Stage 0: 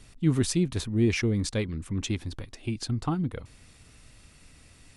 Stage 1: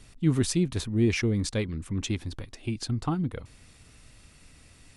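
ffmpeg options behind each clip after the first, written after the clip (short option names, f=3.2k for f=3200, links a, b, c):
-af anull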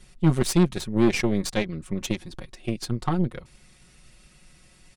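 -af "aecho=1:1:5.5:0.96,aeval=exprs='0.335*(cos(1*acos(clip(val(0)/0.335,-1,1)))-cos(1*PI/2))+0.0422*(cos(6*acos(clip(val(0)/0.335,-1,1)))-cos(6*PI/2))+0.0133*(cos(7*acos(clip(val(0)/0.335,-1,1)))-cos(7*PI/2))':c=same"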